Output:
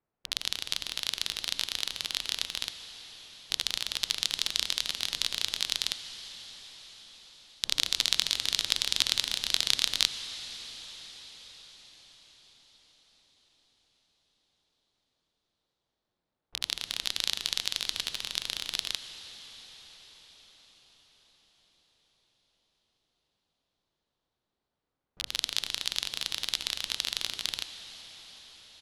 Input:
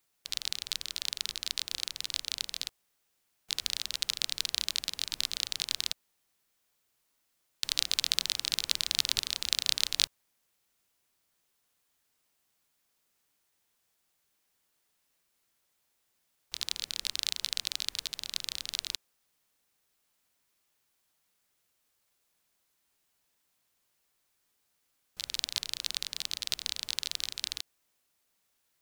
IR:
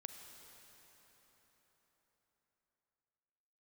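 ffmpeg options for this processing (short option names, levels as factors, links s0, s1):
-filter_complex "[0:a]adynamicsmooth=sensitivity=7.5:basefreq=1100,asetrate=42845,aresample=44100,atempo=1.0293,asplit=2[s0][s1];[1:a]atrim=start_sample=2205,asetrate=23373,aresample=44100[s2];[s1][s2]afir=irnorm=-1:irlink=0,volume=1.12[s3];[s0][s3]amix=inputs=2:normalize=0,volume=0.75"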